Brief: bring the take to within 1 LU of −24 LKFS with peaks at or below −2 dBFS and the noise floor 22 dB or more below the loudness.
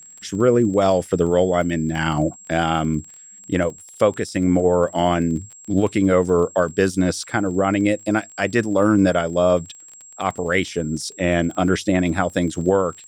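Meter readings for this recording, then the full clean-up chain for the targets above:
crackle rate 23 per second; interfering tone 7,600 Hz; level of the tone −41 dBFS; integrated loudness −20.0 LKFS; sample peak −3.0 dBFS; target loudness −24.0 LKFS
→ click removal
notch filter 7,600 Hz, Q 30
level −4 dB

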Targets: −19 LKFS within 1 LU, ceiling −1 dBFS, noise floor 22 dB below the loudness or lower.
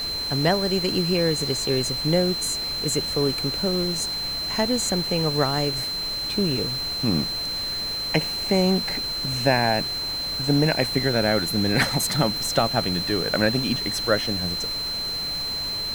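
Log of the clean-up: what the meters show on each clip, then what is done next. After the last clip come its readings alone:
interfering tone 4,100 Hz; level of the tone −26 dBFS; background noise floor −29 dBFS; target noise floor −45 dBFS; integrated loudness −22.5 LKFS; sample peak −4.0 dBFS; target loudness −19.0 LKFS
→ notch filter 4,100 Hz, Q 30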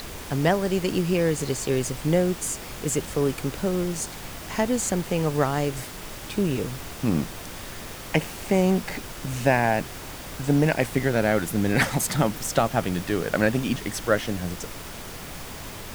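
interfering tone none found; background noise floor −38 dBFS; target noise floor −47 dBFS
→ noise reduction from a noise print 9 dB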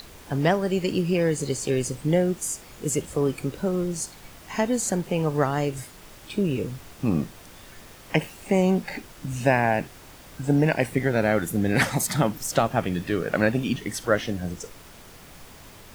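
background noise floor −47 dBFS; integrated loudness −25.0 LKFS; sample peak −4.5 dBFS; target loudness −19.0 LKFS
→ level +6 dB
brickwall limiter −1 dBFS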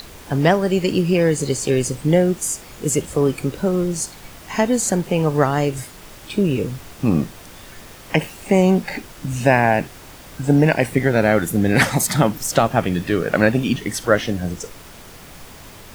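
integrated loudness −19.0 LKFS; sample peak −1.0 dBFS; background noise floor −41 dBFS

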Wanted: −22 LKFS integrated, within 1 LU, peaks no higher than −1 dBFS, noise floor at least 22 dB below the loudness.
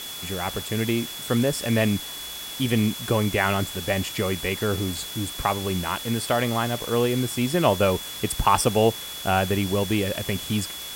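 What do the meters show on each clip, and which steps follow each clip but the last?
interfering tone 3,400 Hz; level of the tone −36 dBFS; background noise floor −36 dBFS; target noise floor −47 dBFS; integrated loudness −24.5 LKFS; sample peak −5.0 dBFS; target loudness −22.0 LKFS
→ notch filter 3,400 Hz, Q 30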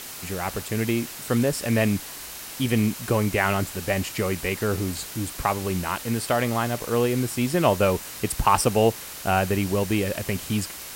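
interfering tone none found; background noise floor −38 dBFS; target noise floor −47 dBFS
→ broadband denoise 9 dB, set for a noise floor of −38 dBFS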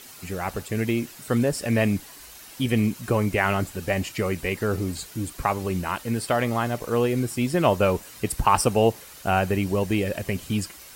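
background noise floor −45 dBFS; target noise floor −47 dBFS
→ broadband denoise 6 dB, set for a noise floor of −45 dBFS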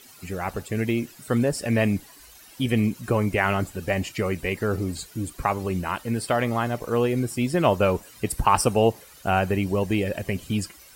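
background noise floor −49 dBFS; integrated loudness −25.0 LKFS; sample peak −5.0 dBFS; target loudness −22.0 LKFS
→ level +3 dB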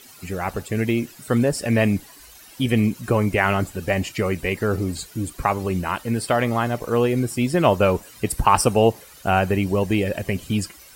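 integrated loudness −22.0 LKFS; sample peak −2.0 dBFS; background noise floor −46 dBFS

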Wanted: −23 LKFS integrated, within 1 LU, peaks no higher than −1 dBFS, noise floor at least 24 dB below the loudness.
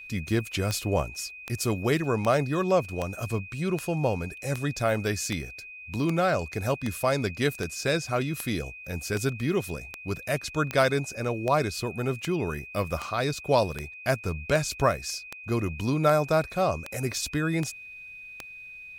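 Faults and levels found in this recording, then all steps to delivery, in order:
number of clicks 24; interfering tone 2,500 Hz; level of the tone −41 dBFS; integrated loudness −28.0 LKFS; sample peak −8.5 dBFS; target loudness −23.0 LKFS
→ click removal
notch filter 2,500 Hz, Q 30
level +5 dB

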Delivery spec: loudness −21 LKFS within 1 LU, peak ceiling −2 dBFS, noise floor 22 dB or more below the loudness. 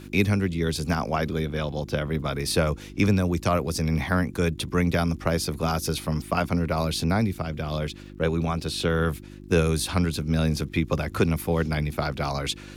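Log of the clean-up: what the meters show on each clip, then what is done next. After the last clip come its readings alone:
crackle rate 35 per second; mains hum 50 Hz; hum harmonics up to 350 Hz; level of the hum −42 dBFS; integrated loudness −26.0 LKFS; sample peak −9.5 dBFS; target loudness −21.0 LKFS
→ click removal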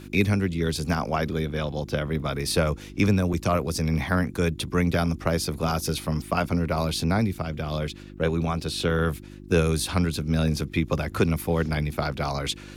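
crackle rate 0.31 per second; mains hum 50 Hz; hum harmonics up to 350 Hz; level of the hum −42 dBFS
→ hum removal 50 Hz, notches 7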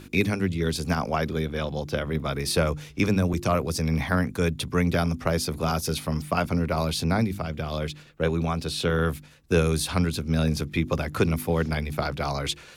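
mains hum none found; integrated loudness −26.0 LKFS; sample peak −9.5 dBFS; target loudness −21.0 LKFS
→ level +5 dB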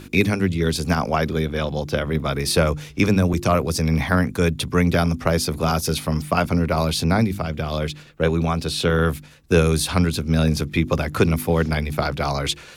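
integrated loudness −21.0 LKFS; sample peak −4.5 dBFS; background noise floor −43 dBFS

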